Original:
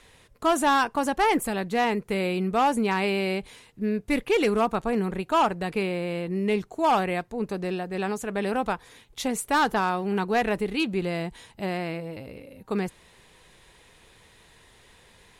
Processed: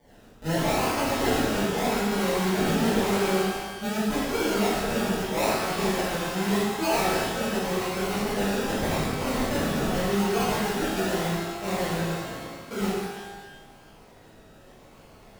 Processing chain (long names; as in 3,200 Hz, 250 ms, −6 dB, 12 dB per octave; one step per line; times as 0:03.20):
Butterworth low-pass 9,400 Hz 48 dB per octave
parametric band 6,300 Hz +11 dB 0.92 octaves
brickwall limiter −19 dBFS, peak gain reduction 8 dB
shaped tremolo saw up 7 Hz, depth 50%
sound drawn into the spectrogram fall, 0:08.79–0:09.03, 1,500–4,100 Hz −29 dBFS
sample-and-hold swept by an LFO 33×, swing 60% 0.85 Hz
reverb with rising layers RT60 1.2 s, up +12 semitones, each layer −8 dB, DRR −11.5 dB
level −8 dB